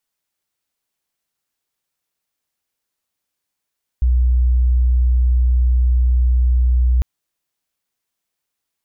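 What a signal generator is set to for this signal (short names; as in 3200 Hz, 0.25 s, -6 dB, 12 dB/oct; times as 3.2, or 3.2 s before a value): tone sine 61.7 Hz -11 dBFS 3.00 s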